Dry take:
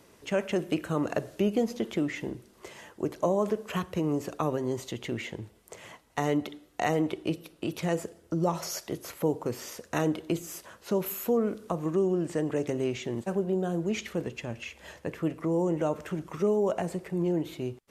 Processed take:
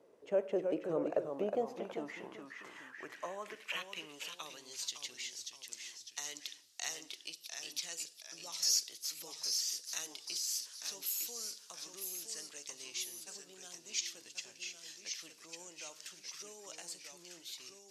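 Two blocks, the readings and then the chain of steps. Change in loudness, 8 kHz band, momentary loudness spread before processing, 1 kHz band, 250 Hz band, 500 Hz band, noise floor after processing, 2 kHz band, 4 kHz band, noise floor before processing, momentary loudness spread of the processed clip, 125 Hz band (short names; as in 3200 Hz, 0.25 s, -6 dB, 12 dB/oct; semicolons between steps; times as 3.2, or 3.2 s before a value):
-9.0 dB, +6.0 dB, 12 LU, -14.0 dB, -19.0 dB, -12.0 dB, -60 dBFS, -8.0 dB, +4.0 dB, -60 dBFS, 13 LU, under -25 dB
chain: echoes that change speed 0.295 s, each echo -1 st, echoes 2, each echo -6 dB; band-pass sweep 500 Hz -> 4900 Hz, 1.09–4.96; pre-emphasis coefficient 0.8; gain +12.5 dB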